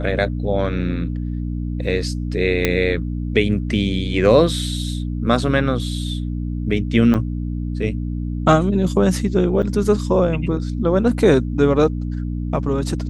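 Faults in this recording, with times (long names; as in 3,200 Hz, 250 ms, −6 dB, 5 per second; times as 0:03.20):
mains hum 60 Hz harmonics 5 −24 dBFS
0:02.65: click −2 dBFS
0:07.14–0:07.15: drop-out 7.7 ms
0:09.62–0:09.63: drop-out 8.1 ms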